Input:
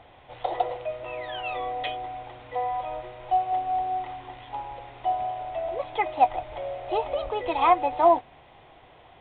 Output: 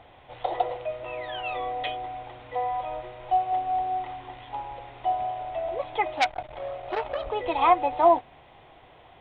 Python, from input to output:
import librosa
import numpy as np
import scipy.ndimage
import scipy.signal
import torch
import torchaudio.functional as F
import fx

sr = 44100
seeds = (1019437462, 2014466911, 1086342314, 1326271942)

y = fx.transformer_sat(x, sr, knee_hz=2600.0, at=(6.15, 7.26))